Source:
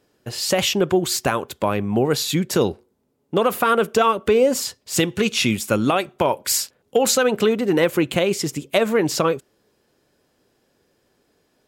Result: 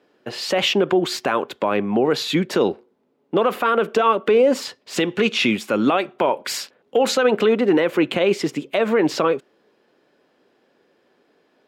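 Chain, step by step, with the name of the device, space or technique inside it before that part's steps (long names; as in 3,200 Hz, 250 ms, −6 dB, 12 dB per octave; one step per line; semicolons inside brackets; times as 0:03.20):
DJ mixer with the lows and highs turned down (three-way crossover with the lows and the highs turned down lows −22 dB, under 190 Hz, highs −18 dB, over 4,000 Hz; brickwall limiter −13.5 dBFS, peak gain reduction 9.5 dB)
level +5 dB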